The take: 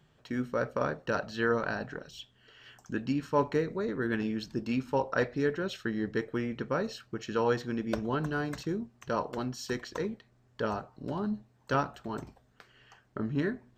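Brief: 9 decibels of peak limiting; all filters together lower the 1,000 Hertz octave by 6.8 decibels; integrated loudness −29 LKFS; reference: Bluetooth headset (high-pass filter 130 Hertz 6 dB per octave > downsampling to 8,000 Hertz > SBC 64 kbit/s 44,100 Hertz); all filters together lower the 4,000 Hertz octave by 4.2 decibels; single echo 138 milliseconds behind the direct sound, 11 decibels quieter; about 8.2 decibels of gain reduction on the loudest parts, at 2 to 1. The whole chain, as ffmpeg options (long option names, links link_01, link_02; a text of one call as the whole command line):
ffmpeg -i in.wav -af "equalizer=frequency=1000:width_type=o:gain=-8.5,equalizer=frequency=4000:width_type=o:gain=-5,acompressor=threshold=-40dB:ratio=2,alimiter=level_in=9dB:limit=-24dB:level=0:latency=1,volume=-9dB,highpass=frequency=130:poles=1,aecho=1:1:138:0.282,aresample=8000,aresample=44100,volume=15.5dB" -ar 44100 -c:a sbc -b:a 64k out.sbc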